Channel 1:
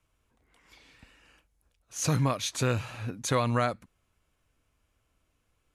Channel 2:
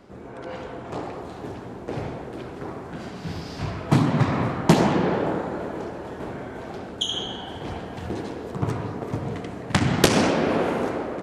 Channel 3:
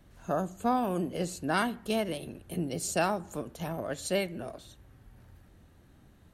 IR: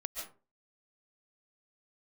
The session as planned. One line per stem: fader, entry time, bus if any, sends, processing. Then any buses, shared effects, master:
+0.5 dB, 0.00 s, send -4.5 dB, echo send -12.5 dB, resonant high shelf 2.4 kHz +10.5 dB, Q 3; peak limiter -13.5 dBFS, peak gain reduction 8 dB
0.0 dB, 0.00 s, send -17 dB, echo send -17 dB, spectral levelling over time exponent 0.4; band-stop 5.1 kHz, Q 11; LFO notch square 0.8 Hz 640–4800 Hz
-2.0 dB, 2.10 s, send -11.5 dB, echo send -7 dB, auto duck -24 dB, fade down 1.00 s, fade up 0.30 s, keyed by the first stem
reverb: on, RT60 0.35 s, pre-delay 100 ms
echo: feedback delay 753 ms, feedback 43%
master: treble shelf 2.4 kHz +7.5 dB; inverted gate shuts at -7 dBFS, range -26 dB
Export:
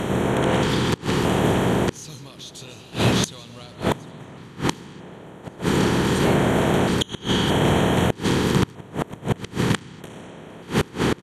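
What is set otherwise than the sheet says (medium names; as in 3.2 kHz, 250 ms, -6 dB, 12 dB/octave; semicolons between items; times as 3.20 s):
stem 1 +0.5 dB -> +7.5 dB; master: missing treble shelf 2.4 kHz +7.5 dB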